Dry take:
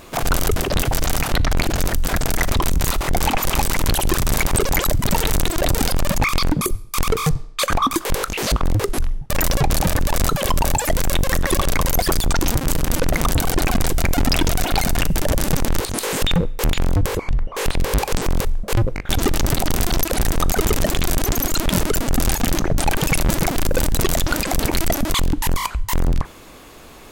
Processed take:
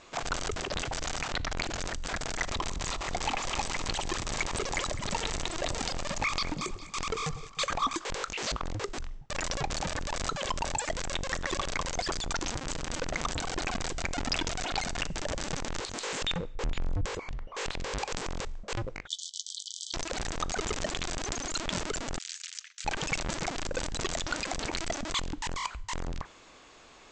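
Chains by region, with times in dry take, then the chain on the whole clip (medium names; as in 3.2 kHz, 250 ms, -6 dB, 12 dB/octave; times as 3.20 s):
2.45–7.93 s: band-stop 1.5 kHz, Q 14 + echo whose repeats swap between lows and highs 102 ms, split 1.1 kHz, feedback 76%, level -12 dB
16.55–17.05 s: tilt EQ -2.5 dB/octave + compression 5:1, threshold -8 dBFS
19.07–19.94 s: brick-wall FIR band-pass 3–12 kHz + doubling 18 ms -13 dB
22.18–22.85 s: self-modulated delay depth 0.18 ms + Bessel high-pass 2.9 kHz, order 8
whole clip: steep low-pass 7.8 kHz 72 dB/octave; bass shelf 430 Hz -10 dB; trim -8.5 dB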